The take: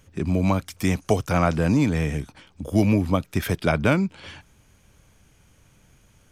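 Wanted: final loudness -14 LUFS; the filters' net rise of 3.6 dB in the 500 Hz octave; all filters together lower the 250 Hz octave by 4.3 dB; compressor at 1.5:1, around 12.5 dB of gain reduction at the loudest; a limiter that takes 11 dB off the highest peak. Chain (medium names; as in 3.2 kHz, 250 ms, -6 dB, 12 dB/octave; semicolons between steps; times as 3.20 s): peaking EQ 250 Hz -8 dB; peaking EQ 500 Hz +6.5 dB; compression 1.5:1, threshold -50 dBFS; trim +25 dB; peak limiter -2.5 dBFS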